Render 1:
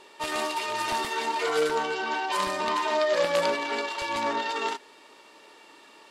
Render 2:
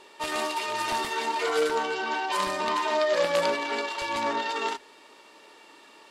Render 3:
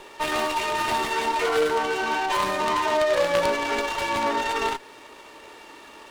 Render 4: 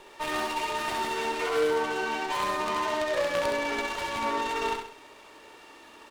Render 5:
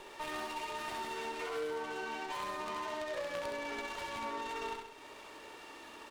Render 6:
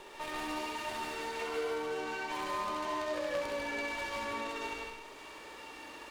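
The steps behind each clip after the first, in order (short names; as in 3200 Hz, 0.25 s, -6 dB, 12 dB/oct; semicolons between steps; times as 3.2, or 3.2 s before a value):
notches 50/100/150 Hz
in parallel at +3 dB: compressor, threshold -33 dBFS, peak gain reduction 12.5 dB; on the sum: running maximum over 5 samples
feedback echo 66 ms, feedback 42%, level -4.5 dB; gain -6.5 dB
compressor 2:1, threshold -46 dBFS, peak gain reduction 13 dB
reverb, pre-delay 0.143 s, DRR 0.5 dB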